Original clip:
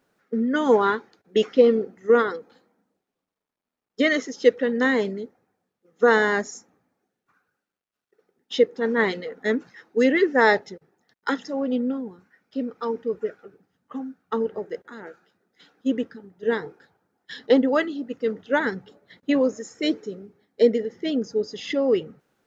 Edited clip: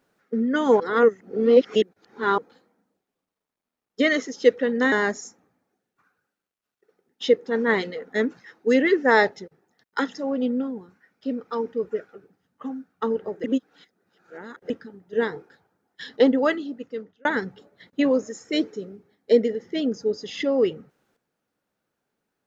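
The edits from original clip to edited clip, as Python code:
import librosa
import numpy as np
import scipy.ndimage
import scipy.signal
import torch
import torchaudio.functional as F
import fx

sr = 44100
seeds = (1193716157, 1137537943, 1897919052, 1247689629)

y = fx.edit(x, sr, fx.reverse_span(start_s=0.8, length_s=1.58),
    fx.cut(start_s=4.92, length_s=1.3),
    fx.reverse_span(start_s=14.74, length_s=1.26),
    fx.fade_out_span(start_s=17.85, length_s=0.7), tone=tone)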